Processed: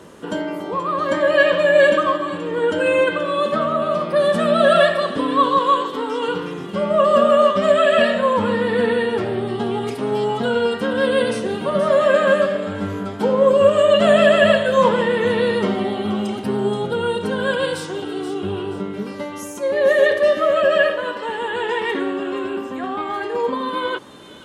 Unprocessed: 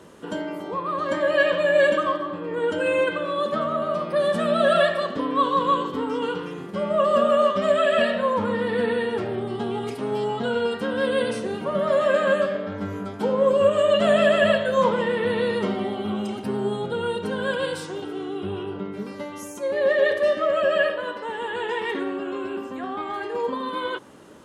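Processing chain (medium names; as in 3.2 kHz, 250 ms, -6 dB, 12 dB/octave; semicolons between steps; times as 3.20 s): 5.58–6.28 s: tone controls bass -14 dB, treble +2 dB; feedback echo behind a high-pass 478 ms, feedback 35%, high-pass 2.9 kHz, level -10 dB; trim +5 dB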